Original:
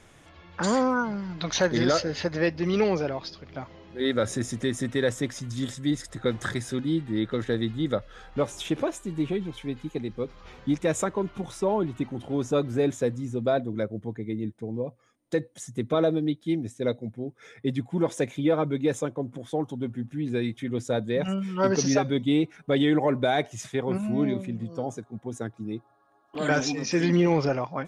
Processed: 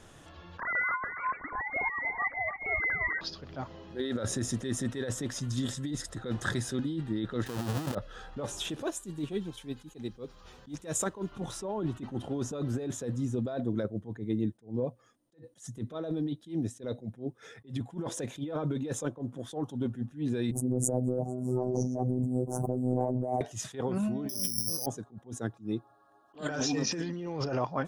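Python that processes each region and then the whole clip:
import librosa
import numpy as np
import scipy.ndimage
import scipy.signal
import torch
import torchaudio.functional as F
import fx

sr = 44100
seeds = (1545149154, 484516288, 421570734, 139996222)

y = fx.chain(x, sr, fx.sine_speech(),
    fx.echo_thinned(ms=286, feedback_pct=47, hz=840.0, wet_db=-7.0),
    fx.freq_invert(carrier_hz=2500), at=(0.6, 3.21))
y = fx.chain(y, sr, fx.halfwave_hold(),
    fx.highpass(hz=80.0, slope=12), at=(7.46, 7.95))
y = fx.chain(y, sr, fx.high_shelf(hz=5300.0, db=11.5),
    fx.upward_expand(threshold_db=-34.0, expansion=1.5), at=(8.7, 11.32))
y = fx.chain(y, sr, fx.ellip_bandstop(low_hz=740.0, high_hz=8100.0, order=3, stop_db=60),
    fx.robotise(hz=126.0),
    fx.pre_swell(db_per_s=49.0), at=(20.51, 23.41))
y = fx.chain(y, sr, fx.hum_notches(base_hz=50, count=6),
    fx.resample_bad(factor=8, down='filtered', up='zero_stuff'), at=(24.29, 24.86))
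y = fx.peak_eq(y, sr, hz=2200.0, db=-10.5, octaves=0.24)
y = fx.over_compress(y, sr, threshold_db=-29.0, ratio=-1.0)
y = fx.attack_slew(y, sr, db_per_s=230.0)
y = y * 10.0 ** (-2.0 / 20.0)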